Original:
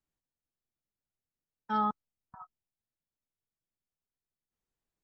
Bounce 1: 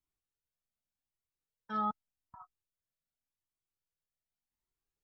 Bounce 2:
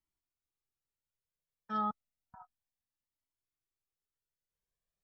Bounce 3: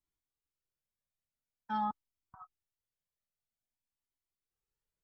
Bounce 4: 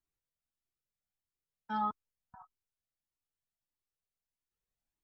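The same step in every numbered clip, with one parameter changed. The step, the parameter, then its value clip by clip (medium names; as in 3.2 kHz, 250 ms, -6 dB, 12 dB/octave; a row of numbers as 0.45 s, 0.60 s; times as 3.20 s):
Shepard-style flanger, rate: 0.86 Hz, 0.31 Hz, 0.48 Hz, 1.6 Hz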